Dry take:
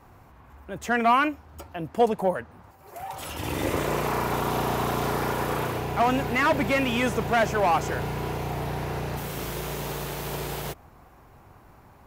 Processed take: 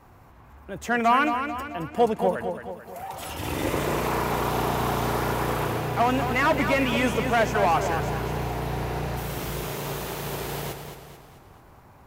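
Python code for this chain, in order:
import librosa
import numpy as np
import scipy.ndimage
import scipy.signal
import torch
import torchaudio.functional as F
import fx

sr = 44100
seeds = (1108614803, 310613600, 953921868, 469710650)

y = fx.echo_warbled(x, sr, ms=219, feedback_pct=48, rate_hz=2.8, cents=53, wet_db=-7.5)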